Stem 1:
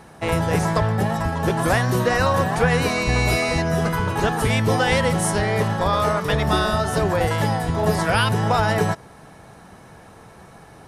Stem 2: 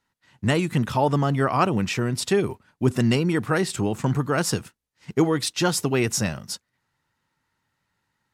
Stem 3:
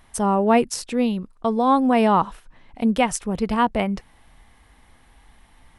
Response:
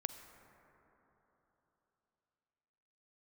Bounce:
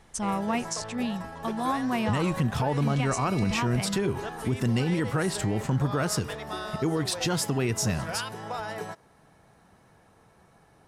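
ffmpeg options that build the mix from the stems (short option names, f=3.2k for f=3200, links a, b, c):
-filter_complex "[0:a]acrossover=split=230[a][b];[a]acompressor=threshold=-33dB:ratio=6[c];[c][b]amix=inputs=2:normalize=0,volume=-14dB[d];[1:a]lowshelf=f=110:g=10.5,bandreject=f=402.8:t=h:w=4,bandreject=f=805.6:t=h:w=4,bandreject=f=1.2084k:t=h:w=4,bandreject=f=1.6112k:t=h:w=4,bandreject=f=2.014k:t=h:w=4,bandreject=f=2.4168k:t=h:w=4,bandreject=f=2.8196k:t=h:w=4,bandreject=f=3.2224k:t=h:w=4,bandreject=f=3.6252k:t=h:w=4,bandreject=f=4.028k:t=h:w=4,bandreject=f=4.4308k:t=h:w=4,bandreject=f=4.8336k:t=h:w=4,bandreject=f=5.2364k:t=h:w=4,bandreject=f=5.6392k:t=h:w=4,bandreject=f=6.042k:t=h:w=4,bandreject=f=6.4448k:t=h:w=4,bandreject=f=6.8476k:t=h:w=4,bandreject=f=7.2504k:t=h:w=4,bandreject=f=7.6532k:t=h:w=4,adelay=1650,volume=-1.5dB[e];[2:a]lowpass=f=7k:t=q:w=2.2,equalizer=f=470:w=1.3:g=-12.5,volume=-5.5dB[f];[d][e][f]amix=inputs=3:normalize=0,alimiter=limit=-17.5dB:level=0:latency=1:release=98"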